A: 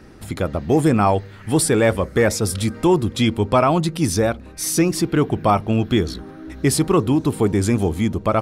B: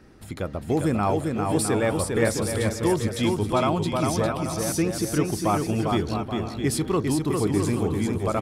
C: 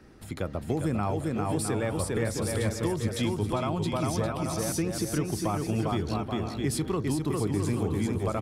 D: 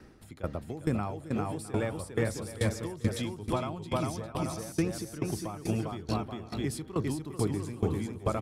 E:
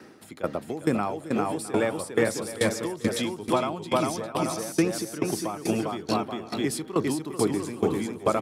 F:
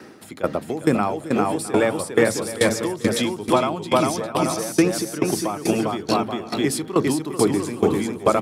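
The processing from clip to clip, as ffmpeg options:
ffmpeg -i in.wav -af "aecho=1:1:400|660|829|938.8|1010:0.631|0.398|0.251|0.158|0.1,volume=-7.5dB" out.wav
ffmpeg -i in.wav -filter_complex "[0:a]acrossover=split=150[link_01][link_02];[link_02]acompressor=threshold=-25dB:ratio=6[link_03];[link_01][link_03]amix=inputs=2:normalize=0,volume=-1.5dB" out.wav
ffmpeg -i in.wav -af "aeval=exprs='val(0)*pow(10,-18*if(lt(mod(2.3*n/s,1),2*abs(2.3)/1000),1-mod(2.3*n/s,1)/(2*abs(2.3)/1000),(mod(2.3*n/s,1)-2*abs(2.3)/1000)/(1-2*abs(2.3)/1000))/20)':channel_layout=same,volume=2dB" out.wav
ffmpeg -i in.wav -af "highpass=230,volume=8dB" out.wav
ffmpeg -i in.wav -af "bandreject=frequency=54.89:width_type=h:width=4,bandreject=frequency=109.78:width_type=h:width=4,bandreject=frequency=164.67:width_type=h:width=4,bandreject=frequency=219.56:width_type=h:width=4,bandreject=frequency=274.45:width_type=h:width=4,volume=6dB" out.wav

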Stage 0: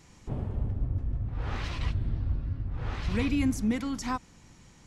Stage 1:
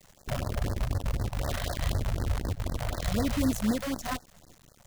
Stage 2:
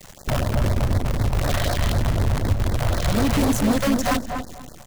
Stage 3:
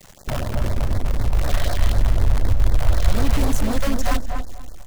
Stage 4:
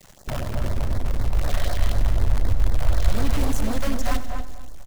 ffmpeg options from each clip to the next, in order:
ffmpeg -i in.wav -af "superequalizer=8b=3.98:9b=0.631:10b=0.708:12b=0.316:14b=0.631,acrusher=bits=6:dc=4:mix=0:aa=0.000001,afftfilt=real='re*(1-between(b*sr/1024,260*pow(2900/260,0.5+0.5*sin(2*PI*4*pts/sr))/1.41,260*pow(2900/260,0.5+0.5*sin(2*PI*4*pts/sr))*1.41))':imag='im*(1-between(b*sr/1024,260*pow(2900/260,0.5+0.5*sin(2*PI*4*pts/sr))/1.41,260*pow(2900/260,0.5+0.5*sin(2*PI*4*pts/sr))*1.41))':win_size=1024:overlap=0.75" out.wav
ffmpeg -i in.wav -filter_complex "[0:a]asplit=2[link_01][link_02];[link_02]aeval=exprs='0.168*sin(PI/2*4.47*val(0)/0.168)':channel_layout=same,volume=-11.5dB[link_03];[link_01][link_03]amix=inputs=2:normalize=0,asplit=2[link_04][link_05];[link_05]adelay=242,lowpass=frequency=1400:poles=1,volume=-4.5dB,asplit=2[link_06][link_07];[link_07]adelay=242,lowpass=frequency=1400:poles=1,volume=0.23,asplit=2[link_08][link_09];[link_09]adelay=242,lowpass=frequency=1400:poles=1,volume=0.23[link_10];[link_04][link_06][link_08][link_10]amix=inputs=4:normalize=0,volume=4.5dB" out.wav
ffmpeg -i in.wav -af "asubboost=boost=8:cutoff=57,volume=-3dB" out.wav
ffmpeg -i in.wav -af "aecho=1:1:95|190|285|380|475:0.2|0.108|0.0582|0.0314|0.017,volume=-3.5dB" out.wav

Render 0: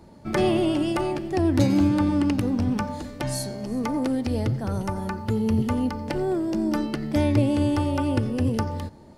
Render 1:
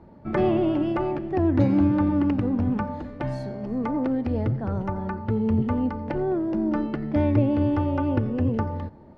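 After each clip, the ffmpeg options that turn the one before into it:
ffmpeg -i in.wav -af "lowpass=1800" out.wav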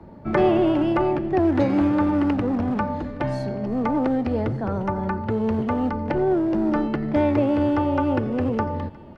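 ffmpeg -i in.wav -filter_complex "[0:a]acrossover=split=170|310|1100[link_01][link_02][link_03][link_04];[link_01]acompressor=threshold=-35dB:ratio=6[link_05];[link_02]asoftclip=type=hard:threshold=-35.5dB[link_06];[link_04]aecho=1:1:1181:0.106[link_07];[link_05][link_06][link_03][link_07]amix=inputs=4:normalize=0,volume=5.5dB" out.wav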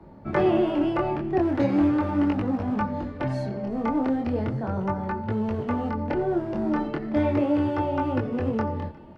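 ffmpeg -i in.wav -af "flanger=delay=19:depth=7.4:speed=0.38" out.wav

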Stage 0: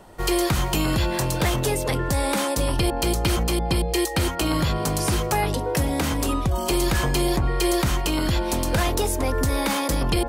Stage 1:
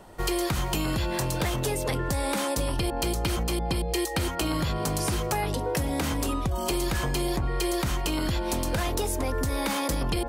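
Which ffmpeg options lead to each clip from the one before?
ffmpeg -i in.wav -af "acompressor=threshold=-22dB:ratio=6,volume=-1.5dB" out.wav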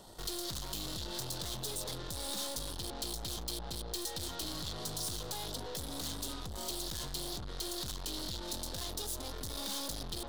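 ffmpeg -i in.wav -af "aeval=exprs='(tanh(79.4*val(0)+0.6)-tanh(0.6))/79.4':channel_layout=same,highshelf=frequency=3000:width_type=q:width=3:gain=7.5,volume=-3.5dB" out.wav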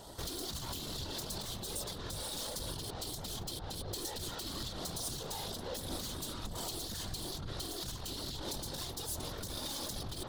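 ffmpeg -i in.wav -af "alimiter=level_in=9dB:limit=-24dB:level=0:latency=1:release=215,volume=-9dB,afftfilt=real='hypot(re,im)*cos(2*PI*random(0))':imag='hypot(re,im)*sin(2*PI*random(1))':win_size=512:overlap=0.75,volume=9.5dB" out.wav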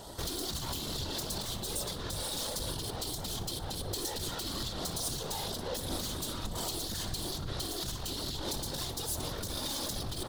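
ffmpeg -i in.wav -af "aecho=1:1:61|122|183|244|305:0.168|0.0856|0.0437|0.0223|0.0114,volume=4dB" out.wav

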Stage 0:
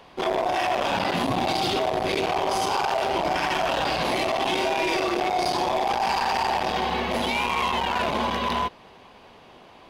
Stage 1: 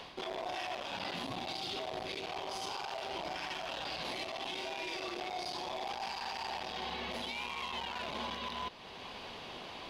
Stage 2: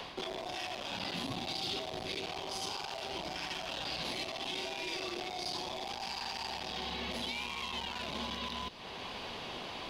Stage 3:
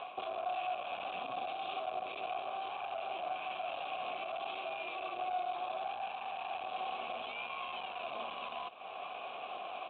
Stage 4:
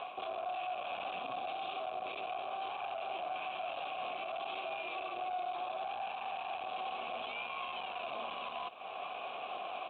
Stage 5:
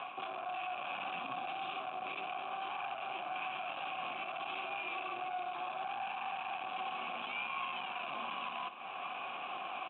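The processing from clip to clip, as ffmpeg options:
ffmpeg -i in.wav -af "equalizer=frequency=4000:width=0.8:gain=8.5,areverse,acompressor=threshold=-32dB:ratio=4,areverse,alimiter=level_in=7.5dB:limit=-24dB:level=0:latency=1:release=411,volume=-7.5dB,volume=1dB" out.wav
ffmpeg -i in.wav -filter_complex "[0:a]acrossover=split=320|3000[link_01][link_02][link_03];[link_02]acompressor=threshold=-46dB:ratio=4[link_04];[link_01][link_04][link_03]amix=inputs=3:normalize=0,volume=4.5dB" out.wav
ffmpeg -i in.wav -filter_complex "[0:a]aresample=8000,aeval=exprs='max(val(0),0)':channel_layout=same,aresample=44100,asplit=3[link_01][link_02][link_03];[link_01]bandpass=frequency=730:width_type=q:width=8,volume=0dB[link_04];[link_02]bandpass=frequency=1090:width_type=q:width=8,volume=-6dB[link_05];[link_03]bandpass=frequency=2440:width_type=q:width=8,volume=-9dB[link_06];[link_04][link_05][link_06]amix=inputs=3:normalize=0,volume=14.5dB" out.wav
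ffmpeg -i in.wav -af "alimiter=level_in=8.5dB:limit=-24dB:level=0:latency=1:release=32,volume=-8.5dB,volume=1.5dB" out.wav
ffmpeg -i in.wav -af "highpass=frequency=130:width=0.5412,highpass=frequency=130:width=1.3066,equalizer=frequency=130:width_type=q:width=4:gain=4,equalizer=frequency=450:width_type=q:width=4:gain=-10,equalizer=frequency=640:width_type=q:width=4:gain=-10,equalizer=frequency=1600:width_type=q:width=4:gain=3,lowpass=frequency=3100:width=0.5412,lowpass=frequency=3100:width=1.3066,aecho=1:1:59|546:0.15|0.15,volume=3dB" out.wav

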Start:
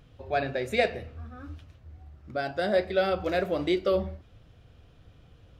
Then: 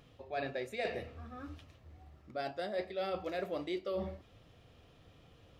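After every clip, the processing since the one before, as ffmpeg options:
ffmpeg -i in.wav -af "lowshelf=frequency=130:gain=-12,bandreject=frequency=1500:width=10,areverse,acompressor=threshold=-35dB:ratio=5,areverse" out.wav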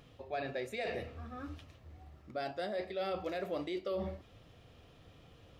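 ffmpeg -i in.wav -af "alimiter=level_in=6.5dB:limit=-24dB:level=0:latency=1:release=38,volume=-6.5dB,volume=2dB" out.wav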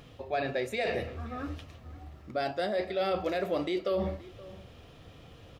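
ffmpeg -i in.wav -filter_complex "[0:a]asplit=2[link_01][link_02];[link_02]adelay=524.8,volume=-19dB,highshelf=frequency=4000:gain=-11.8[link_03];[link_01][link_03]amix=inputs=2:normalize=0,volume=7dB" out.wav

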